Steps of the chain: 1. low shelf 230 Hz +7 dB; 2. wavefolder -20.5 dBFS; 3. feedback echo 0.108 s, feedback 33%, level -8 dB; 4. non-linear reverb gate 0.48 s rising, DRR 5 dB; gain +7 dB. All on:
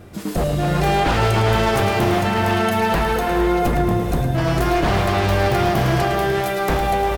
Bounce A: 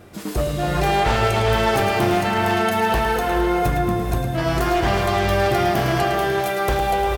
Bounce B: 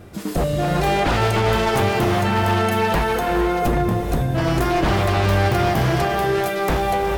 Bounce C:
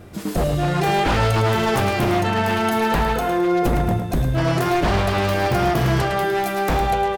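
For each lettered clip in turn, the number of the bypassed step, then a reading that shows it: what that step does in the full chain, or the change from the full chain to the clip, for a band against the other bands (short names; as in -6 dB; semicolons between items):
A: 1, 125 Hz band -3.5 dB; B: 3, echo-to-direct -2.5 dB to -5.0 dB; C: 4, echo-to-direct -2.5 dB to -7.5 dB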